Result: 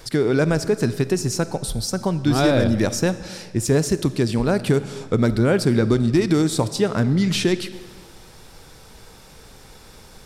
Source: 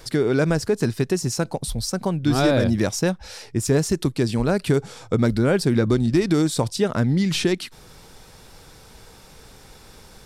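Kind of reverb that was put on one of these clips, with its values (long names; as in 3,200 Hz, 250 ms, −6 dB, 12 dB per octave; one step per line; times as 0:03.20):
comb and all-pass reverb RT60 1.8 s, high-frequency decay 0.85×, pre-delay 10 ms, DRR 13.5 dB
level +1 dB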